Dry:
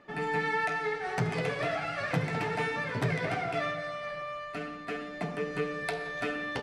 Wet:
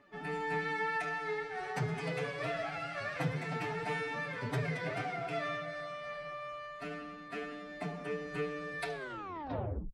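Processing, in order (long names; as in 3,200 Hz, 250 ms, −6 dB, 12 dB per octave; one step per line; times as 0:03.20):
turntable brake at the end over 0.68 s
phase-vocoder stretch with locked phases 1.5×
level −5 dB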